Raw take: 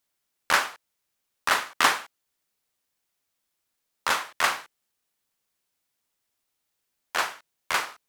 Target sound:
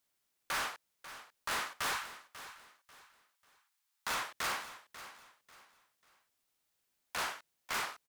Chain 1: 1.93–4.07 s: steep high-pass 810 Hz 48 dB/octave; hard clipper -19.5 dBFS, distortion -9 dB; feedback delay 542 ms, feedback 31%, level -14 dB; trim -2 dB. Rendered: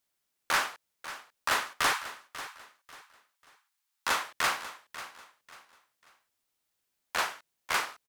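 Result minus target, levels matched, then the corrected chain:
hard clipper: distortion -7 dB
1.93–4.07 s: steep high-pass 810 Hz 48 dB/octave; hard clipper -31 dBFS, distortion -2 dB; feedback delay 542 ms, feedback 31%, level -14 dB; trim -2 dB

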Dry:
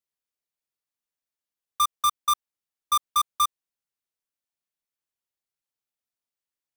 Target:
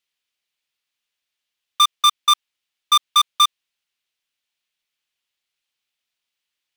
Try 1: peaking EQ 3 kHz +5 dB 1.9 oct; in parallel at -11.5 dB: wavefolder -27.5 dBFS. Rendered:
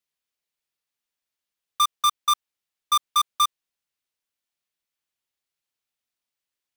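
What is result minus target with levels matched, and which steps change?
4 kHz band -3.0 dB
change: peaking EQ 3 kHz +15.5 dB 1.9 oct

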